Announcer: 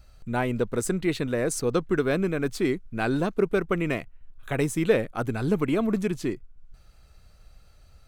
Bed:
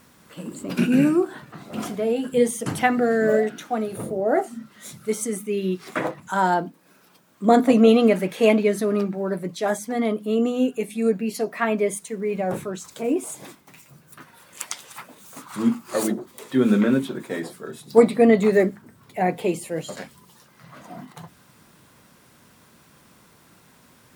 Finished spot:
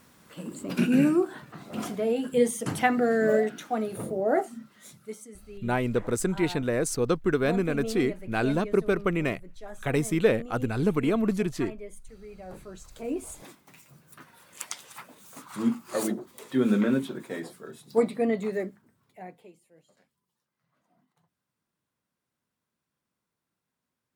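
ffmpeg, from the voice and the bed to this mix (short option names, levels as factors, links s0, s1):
-filter_complex "[0:a]adelay=5350,volume=0.944[s0];[1:a]volume=3.76,afade=t=out:st=4.33:d=0.93:silence=0.149624,afade=t=in:st=12.39:d=1.28:silence=0.177828,afade=t=out:st=16.99:d=2.54:silence=0.0501187[s1];[s0][s1]amix=inputs=2:normalize=0"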